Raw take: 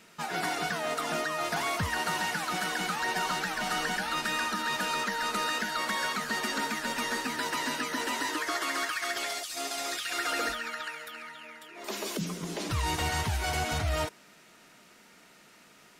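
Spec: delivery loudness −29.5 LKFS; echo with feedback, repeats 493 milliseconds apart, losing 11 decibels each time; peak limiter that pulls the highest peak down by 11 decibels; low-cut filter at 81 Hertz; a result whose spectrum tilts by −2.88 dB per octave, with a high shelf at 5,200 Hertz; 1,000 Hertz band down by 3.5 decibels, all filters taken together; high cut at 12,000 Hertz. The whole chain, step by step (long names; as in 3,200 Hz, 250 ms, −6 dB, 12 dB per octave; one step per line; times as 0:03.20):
high-pass filter 81 Hz
low-pass filter 12,000 Hz
parametric band 1,000 Hz −5 dB
high-shelf EQ 5,200 Hz +8 dB
brickwall limiter −29.5 dBFS
repeating echo 493 ms, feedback 28%, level −11 dB
level +7 dB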